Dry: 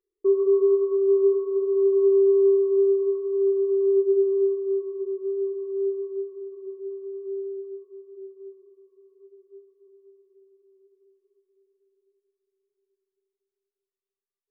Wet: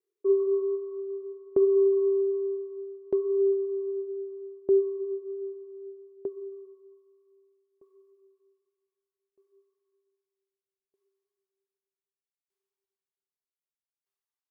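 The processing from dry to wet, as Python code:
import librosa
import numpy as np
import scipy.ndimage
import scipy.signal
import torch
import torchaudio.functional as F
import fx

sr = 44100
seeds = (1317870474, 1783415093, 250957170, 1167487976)

y = fx.peak_eq(x, sr, hz=320.0, db=-9.5, octaves=0.57)
y = fx.echo_multitap(y, sr, ms=(46, 506, 737), db=(-5.0, -13.0, -13.0))
y = fx.filter_sweep_highpass(y, sr, from_hz=310.0, to_hz=850.0, start_s=6.04, end_s=7.08, q=1.8)
y = fx.tremolo_decay(y, sr, direction='decaying', hz=0.64, depth_db=27)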